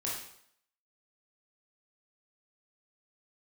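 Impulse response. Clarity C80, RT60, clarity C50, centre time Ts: 6.0 dB, 0.65 s, 1.5 dB, 51 ms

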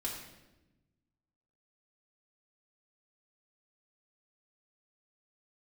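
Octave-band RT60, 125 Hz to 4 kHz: 1.8, 1.6, 1.2, 0.90, 0.90, 0.80 s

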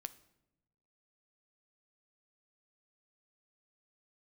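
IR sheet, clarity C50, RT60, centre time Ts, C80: 17.0 dB, 0.95 s, 3 ms, 20.0 dB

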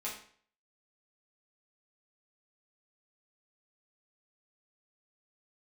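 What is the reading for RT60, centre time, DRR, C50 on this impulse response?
0.50 s, 32 ms, -7.0 dB, 5.5 dB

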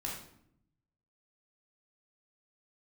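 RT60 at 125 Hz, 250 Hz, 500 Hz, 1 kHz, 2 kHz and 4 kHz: 1.3, 1.1, 0.75, 0.65, 0.55, 0.50 s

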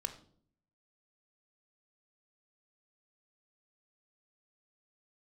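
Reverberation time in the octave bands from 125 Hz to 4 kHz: 0.85, 0.80, 0.65, 0.45, 0.35, 0.40 s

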